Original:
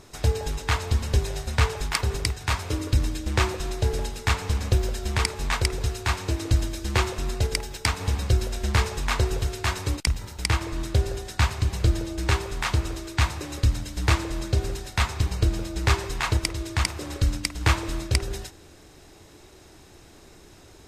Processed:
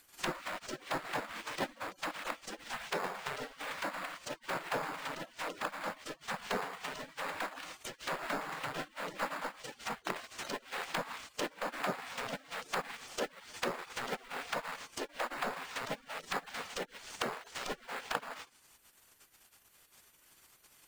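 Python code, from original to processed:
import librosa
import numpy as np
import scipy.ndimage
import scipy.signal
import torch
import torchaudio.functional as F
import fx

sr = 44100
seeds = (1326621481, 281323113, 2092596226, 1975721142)

p1 = fx.spec_gate(x, sr, threshold_db=-30, keep='weak')
p2 = fx.env_lowpass_down(p1, sr, base_hz=1500.0, full_db=-38.0)
p3 = fx.sample_hold(p2, sr, seeds[0], rate_hz=5900.0, jitter_pct=0)
p4 = p2 + (p3 * librosa.db_to_amplitude(-5.0))
y = p4 * librosa.db_to_amplitude(6.5)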